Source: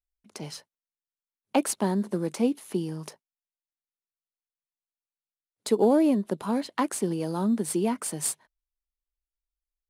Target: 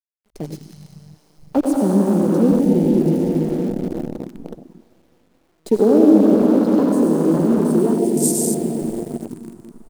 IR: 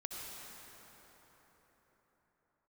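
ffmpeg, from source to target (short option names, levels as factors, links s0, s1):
-filter_complex "[0:a]asettb=1/sr,asplit=3[s0][s1][s2];[s0]atrim=end=6.774[s3];[s1]atrim=start=6.77:end=7.9,asetpts=PTS-STARTPTS,afade=t=in:d=0.004:c=qsin,afade=t=out:st=1.126:d=0.004:c=qsin,equalizer=f=190:w=3.7:g=-8[s4];[s2]atrim=start=7.896[s5];[s3][s4]acrossfade=d=0.004:c1=hsin:c2=qsin[s6];[s6][s5]acrossfade=d=0.004:c1=qsin:c2=hsin[s7];[1:a]atrim=start_sample=2205,asetrate=38367,aresample=44100[s8];[s7][s8]afir=irnorm=-1:irlink=0,asplit=2[s9][s10];[s10]alimiter=limit=0.0794:level=0:latency=1:release=72,volume=0.944[s11];[s9][s11]amix=inputs=2:normalize=0,asplit=2[s12][s13];[s13]adelay=198.3,volume=0.0447,highshelf=f=4000:g=-4.46[s14];[s12][s14]amix=inputs=2:normalize=0,acrossover=split=600|3200[s15][s16][s17];[s16]acompressor=threshold=0.00398:ratio=5[s18];[s15][s18][s17]amix=inputs=3:normalize=0,highpass=f=40:w=0.5412,highpass=f=40:w=1.3066,acrusher=bits=6:dc=4:mix=0:aa=0.000001,afwtdn=0.0251,volume=2.66"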